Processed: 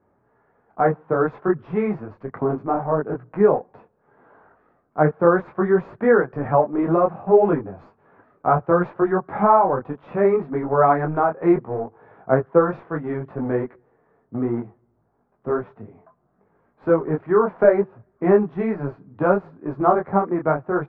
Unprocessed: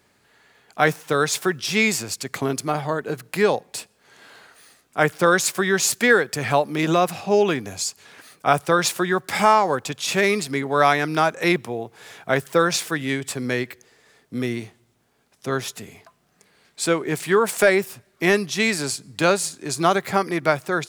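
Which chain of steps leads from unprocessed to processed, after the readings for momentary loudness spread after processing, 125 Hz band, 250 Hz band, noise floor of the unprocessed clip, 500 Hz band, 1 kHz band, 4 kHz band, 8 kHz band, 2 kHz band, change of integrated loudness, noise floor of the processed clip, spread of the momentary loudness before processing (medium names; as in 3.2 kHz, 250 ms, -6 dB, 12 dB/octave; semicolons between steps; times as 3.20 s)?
12 LU, +2.0 dB, +2.0 dB, -63 dBFS, +3.0 dB, +0.5 dB, under -35 dB, under -40 dB, -9.5 dB, +0.5 dB, -66 dBFS, 10 LU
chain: in parallel at -9 dB: bit crusher 4-bit; on the sum: low-pass 1.2 kHz 24 dB/octave; detune thickener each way 23 cents; trim +3.5 dB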